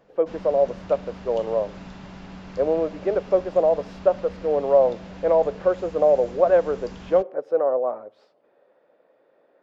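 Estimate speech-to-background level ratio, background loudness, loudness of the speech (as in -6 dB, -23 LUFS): 18.5 dB, -41.0 LUFS, -22.5 LUFS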